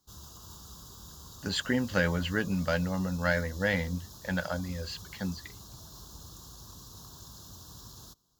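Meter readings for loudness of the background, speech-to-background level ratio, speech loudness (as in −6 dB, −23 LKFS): −47.5 LKFS, 16.0 dB, −31.5 LKFS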